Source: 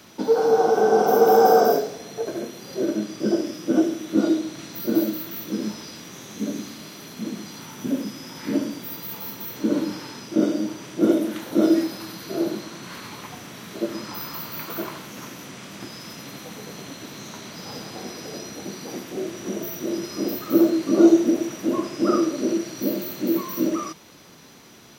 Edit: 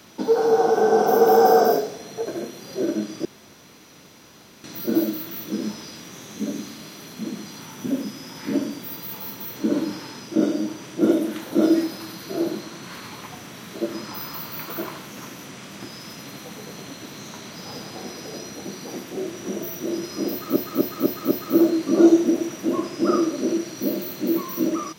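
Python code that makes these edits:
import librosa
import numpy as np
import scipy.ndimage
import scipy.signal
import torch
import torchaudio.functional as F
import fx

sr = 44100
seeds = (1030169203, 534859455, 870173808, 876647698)

y = fx.edit(x, sr, fx.room_tone_fill(start_s=3.25, length_s=1.39),
    fx.repeat(start_s=20.31, length_s=0.25, count=5), tone=tone)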